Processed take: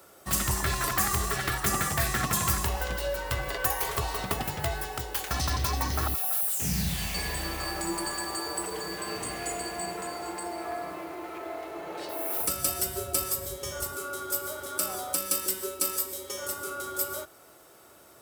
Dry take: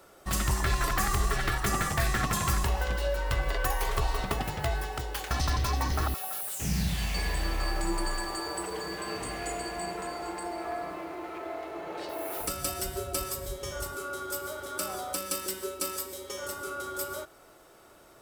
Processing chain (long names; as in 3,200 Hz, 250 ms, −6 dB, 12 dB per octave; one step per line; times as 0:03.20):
high-pass filter 61 Hz 24 dB per octave
high-shelf EQ 7,800 Hz +9.5 dB